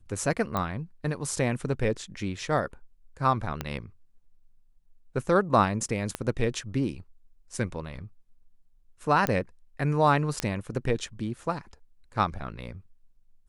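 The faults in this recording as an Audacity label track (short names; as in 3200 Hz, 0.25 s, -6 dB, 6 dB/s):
0.570000	0.570000	pop -15 dBFS
3.610000	3.610000	pop -15 dBFS
6.150000	6.150000	pop -15 dBFS
9.270000	9.270000	pop -10 dBFS
10.400000	10.400000	pop -11 dBFS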